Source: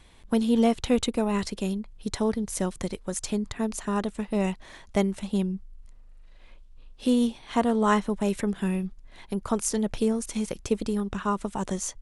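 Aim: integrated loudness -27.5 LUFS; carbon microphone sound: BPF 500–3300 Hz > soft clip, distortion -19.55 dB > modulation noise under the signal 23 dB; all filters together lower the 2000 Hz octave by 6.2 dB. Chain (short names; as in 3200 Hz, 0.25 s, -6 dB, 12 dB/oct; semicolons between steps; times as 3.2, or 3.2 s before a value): BPF 500–3300 Hz; bell 2000 Hz -7.5 dB; soft clip -17.5 dBFS; modulation noise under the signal 23 dB; gain +8.5 dB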